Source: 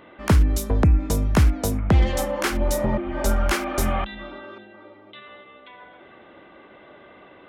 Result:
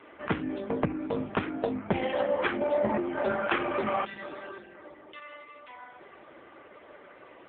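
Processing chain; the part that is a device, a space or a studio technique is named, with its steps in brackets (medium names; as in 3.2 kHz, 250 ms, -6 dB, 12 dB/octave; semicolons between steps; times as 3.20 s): telephone (band-pass 270–3600 Hz; trim +1 dB; AMR-NB 5.9 kbps 8 kHz)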